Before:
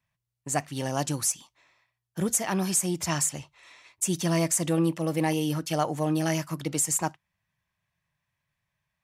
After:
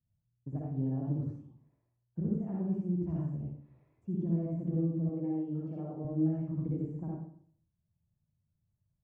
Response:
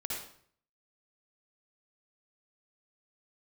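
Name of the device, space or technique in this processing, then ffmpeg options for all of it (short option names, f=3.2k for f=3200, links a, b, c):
television next door: -filter_complex "[0:a]acompressor=threshold=-29dB:ratio=4,lowpass=250[a];[1:a]atrim=start_sample=2205[b];[a][b]afir=irnorm=-1:irlink=0,asettb=1/sr,asplit=3[c][d][e];[c]atrim=end=5.094[f];[d]atrim=start=5.09:end=6.05,asetpts=PTS-STARTPTS,afade=t=in:d=0.004:c=qsin,afade=t=out:st=0.956:d=0.004:c=qsin,highpass=f=320:p=1[g];[e]atrim=start=6.046[h];[f][g]acrossfade=d=0.004:c1=hsin:c2=qsin[i];[i][h]acrossfade=d=0.004:c1=qsin:c2=hsin,volume=3dB"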